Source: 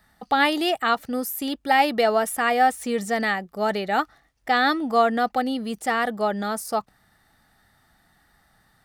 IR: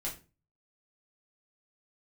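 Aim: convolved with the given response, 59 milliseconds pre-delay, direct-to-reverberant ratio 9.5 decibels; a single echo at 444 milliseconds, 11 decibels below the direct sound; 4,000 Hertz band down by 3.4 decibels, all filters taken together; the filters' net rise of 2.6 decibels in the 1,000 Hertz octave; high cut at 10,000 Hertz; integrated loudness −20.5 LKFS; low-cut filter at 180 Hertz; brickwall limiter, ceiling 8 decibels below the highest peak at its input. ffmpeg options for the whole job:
-filter_complex "[0:a]highpass=180,lowpass=10000,equalizer=frequency=1000:width_type=o:gain=4,equalizer=frequency=4000:width_type=o:gain=-5,alimiter=limit=-12dB:level=0:latency=1,aecho=1:1:444:0.282,asplit=2[link_01][link_02];[1:a]atrim=start_sample=2205,adelay=59[link_03];[link_02][link_03]afir=irnorm=-1:irlink=0,volume=-11dB[link_04];[link_01][link_04]amix=inputs=2:normalize=0,volume=2.5dB"

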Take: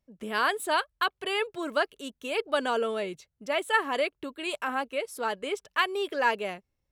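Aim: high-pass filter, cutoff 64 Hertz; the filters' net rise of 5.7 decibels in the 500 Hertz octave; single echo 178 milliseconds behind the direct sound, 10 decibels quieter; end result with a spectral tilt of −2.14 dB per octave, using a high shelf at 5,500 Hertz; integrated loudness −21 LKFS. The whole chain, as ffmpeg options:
ffmpeg -i in.wav -af "highpass=64,equalizer=frequency=500:width_type=o:gain=7,highshelf=frequency=5500:gain=4.5,aecho=1:1:178:0.316,volume=5dB" out.wav

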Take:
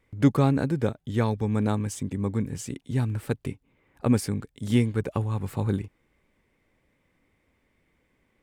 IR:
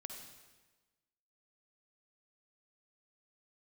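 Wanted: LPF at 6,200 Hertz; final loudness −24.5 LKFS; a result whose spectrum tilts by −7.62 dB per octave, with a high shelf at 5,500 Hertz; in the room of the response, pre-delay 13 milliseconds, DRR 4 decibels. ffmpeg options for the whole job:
-filter_complex "[0:a]lowpass=6200,highshelf=frequency=5500:gain=-6.5,asplit=2[link_01][link_02];[1:a]atrim=start_sample=2205,adelay=13[link_03];[link_02][link_03]afir=irnorm=-1:irlink=0,volume=-0.5dB[link_04];[link_01][link_04]amix=inputs=2:normalize=0,volume=2dB"

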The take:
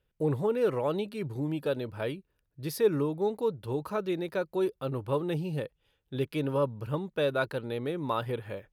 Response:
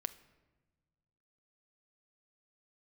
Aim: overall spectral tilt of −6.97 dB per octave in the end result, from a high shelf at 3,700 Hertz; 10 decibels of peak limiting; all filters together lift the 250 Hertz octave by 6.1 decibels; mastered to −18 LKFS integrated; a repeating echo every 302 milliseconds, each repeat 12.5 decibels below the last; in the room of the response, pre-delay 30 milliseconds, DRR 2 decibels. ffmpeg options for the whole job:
-filter_complex "[0:a]equalizer=frequency=250:width_type=o:gain=8.5,highshelf=frequency=3700:gain=-9,alimiter=limit=-22dB:level=0:latency=1,aecho=1:1:302|604|906:0.237|0.0569|0.0137,asplit=2[link_01][link_02];[1:a]atrim=start_sample=2205,adelay=30[link_03];[link_02][link_03]afir=irnorm=-1:irlink=0,volume=-1dB[link_04];[link_01][link_04]amix=inputs=2:normalize=0,volume=11.5dB"

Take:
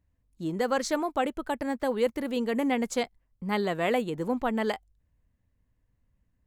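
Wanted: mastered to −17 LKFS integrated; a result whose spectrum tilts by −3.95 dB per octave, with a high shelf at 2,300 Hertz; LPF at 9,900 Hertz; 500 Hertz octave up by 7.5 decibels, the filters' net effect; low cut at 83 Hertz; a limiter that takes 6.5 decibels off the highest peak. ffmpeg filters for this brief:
ffmpeg -i in.wav -af "highpass=83,lowpass=9900,equalizer=frequency=500:width_type=o:gain=8,highshelf=frequency=2300:gain=4,volume=9dB,alimiter=limit=-5.5dB:level=0:latency=1" out.wav

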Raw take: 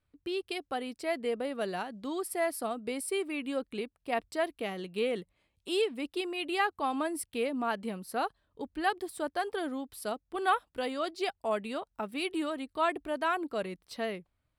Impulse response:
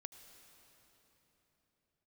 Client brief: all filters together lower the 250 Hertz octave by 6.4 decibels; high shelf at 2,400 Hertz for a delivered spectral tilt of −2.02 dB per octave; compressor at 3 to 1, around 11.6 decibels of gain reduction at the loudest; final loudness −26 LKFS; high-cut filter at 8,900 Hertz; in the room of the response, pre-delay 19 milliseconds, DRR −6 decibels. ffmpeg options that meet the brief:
-filter_complex "[0:a]lowpass=8900,equalizer=frequency=250:width_type=o:gain=-9,highshelf=frequency=2400:gain=3.5,acompressor=threshold=-39dB:ratio=3,asplit=2[link_01][link_02];[1:a]atrim=start_sample=2205,adelay=19[link_03];[link_02][link_03]afir=irnorm=-1:irlink=0,volume=11.5dB[link_04];[link_01][link_04]amix=inputs=2:normalize=0,volume=8.5dB"

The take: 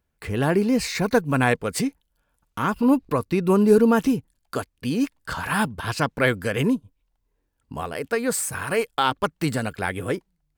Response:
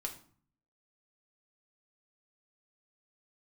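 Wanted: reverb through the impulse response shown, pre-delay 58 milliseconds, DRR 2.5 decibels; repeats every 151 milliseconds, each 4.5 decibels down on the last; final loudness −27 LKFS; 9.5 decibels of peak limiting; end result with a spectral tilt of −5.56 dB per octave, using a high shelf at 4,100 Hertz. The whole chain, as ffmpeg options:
-filter_complex "[0:a]highshelf=frequency=4100:gain=-4,alimiter=limit=-15dB:level=0:latency=1,aecho=1:1:151|302|453|604|755|906|1057|1208|1359:0.596|0.357|0.214|0.129|0.0772|0.0463|0.0278|0.0167|0.01,asplit=2[link_01][link_02];[1:a]atrim=start_sample=2205,adelay=58[link_03];[link_02][link_03]afir=irnorm=-1:irlink=0,volume=-2dB[link_04];[link_01][link_04]amix=inputs=2:normalize=0,volume=-4dB"

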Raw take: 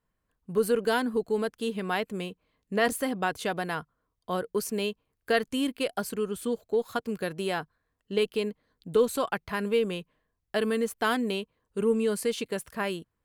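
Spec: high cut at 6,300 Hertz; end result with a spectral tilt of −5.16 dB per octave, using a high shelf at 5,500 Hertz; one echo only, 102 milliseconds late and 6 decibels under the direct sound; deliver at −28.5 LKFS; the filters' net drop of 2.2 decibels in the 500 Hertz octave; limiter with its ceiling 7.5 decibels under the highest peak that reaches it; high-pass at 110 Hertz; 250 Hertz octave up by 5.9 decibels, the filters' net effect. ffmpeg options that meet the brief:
ffmpeg -i in.wav -af "highpass=110,lowpass=6300,equalizer=frequency=250:width_type=o:gain=8,equalizer=frequency=500:width_type=o:gain=-5,highshelf=frequency=5500:gain=7,alimiter=limit=-19.5dB:level=0:latency=1,aecho=1:1:102:0.501,volume=1dB" out.wav

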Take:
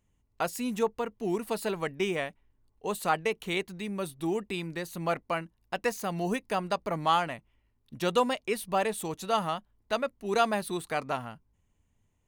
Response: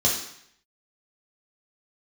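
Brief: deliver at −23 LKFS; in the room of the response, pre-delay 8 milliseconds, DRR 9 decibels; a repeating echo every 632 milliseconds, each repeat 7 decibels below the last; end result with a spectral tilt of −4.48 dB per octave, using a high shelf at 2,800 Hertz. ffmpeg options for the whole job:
-filter_complex "[0:a]highshelf=frequency=2800:gain=-8.5,aecho=1:1:632|1264|1896|2528|3160:0.447|0.201|0.0905|0.0407|0.0183,asplit=2[link_01][link_02];[1:a]atrim=start_sample=2205,adelay=8[link_03];[link_02][link_03]afir=irnorm=-1:irlink=0,volume=-21.5dB[link_04];[link_01][link_04]amix=inputs=2:normalize=0,volume=7.5dB"

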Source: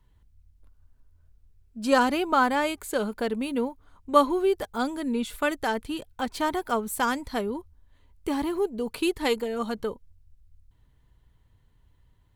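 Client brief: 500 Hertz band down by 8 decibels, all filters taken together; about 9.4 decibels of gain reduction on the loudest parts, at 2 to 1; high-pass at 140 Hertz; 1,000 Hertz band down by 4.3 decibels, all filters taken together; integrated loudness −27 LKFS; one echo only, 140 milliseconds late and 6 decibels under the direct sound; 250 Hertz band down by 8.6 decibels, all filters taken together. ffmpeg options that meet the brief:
ffmpeg -i in.wav -af "highpass=140,equalizer=frequency=250:width_type=o:gain=-7.5,equalizer=frequency=500:width_type=o:gain=-7,equalizer=frequency=1000:width_type=o:gain=-3,acompressor=threshold=-35dB:ratio=2,aecho=1:1:140:0.501,volume=9dB" out.wav

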